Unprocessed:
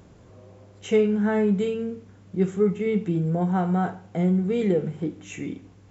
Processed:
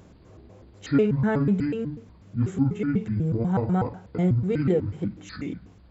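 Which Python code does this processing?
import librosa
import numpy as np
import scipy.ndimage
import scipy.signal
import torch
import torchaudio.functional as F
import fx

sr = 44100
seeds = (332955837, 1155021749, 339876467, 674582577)

y = fx.pitch_trill(x, sr, semitones=-7.5, every_ms=123)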